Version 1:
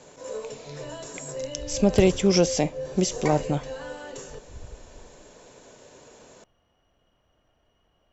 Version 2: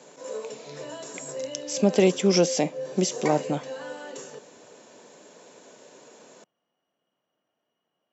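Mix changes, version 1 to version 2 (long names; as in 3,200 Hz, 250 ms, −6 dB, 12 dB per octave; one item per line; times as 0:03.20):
background −10.0 dB
master: add high-pass filter 170 Hz 24 dB per octave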